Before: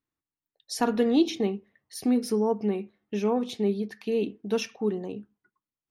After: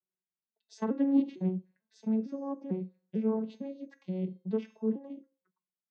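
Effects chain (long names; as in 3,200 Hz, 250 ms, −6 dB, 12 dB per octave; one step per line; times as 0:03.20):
vocoder with an arpeggio as carrier minor triad, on F#3, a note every 450 ms
tuned comb filter 530 Hz, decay 0.47 s, mix 80%
treble cut that deepens with the level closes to 2,700 Hz, closed at −37 dBFS
level +9 dB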